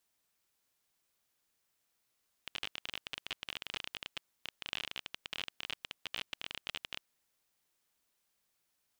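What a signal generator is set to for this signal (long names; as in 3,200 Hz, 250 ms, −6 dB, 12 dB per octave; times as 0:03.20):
Geiger counter clicks 26 per second −21.5 dBFS 4.62 s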